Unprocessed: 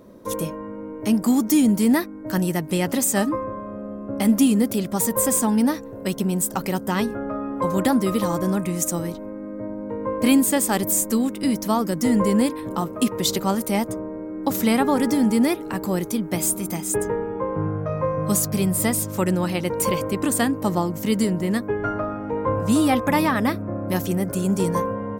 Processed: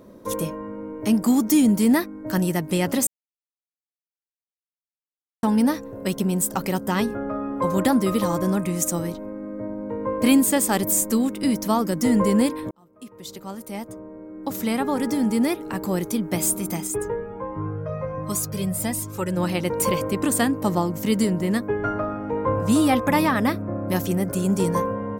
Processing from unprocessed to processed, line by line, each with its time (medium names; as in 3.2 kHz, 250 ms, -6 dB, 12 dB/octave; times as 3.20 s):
3.07–5.43 s: mute
12.71–16.24 s: fade in linear
16.87–19.37 s: Shepard-style flanger rising 1.4 Hz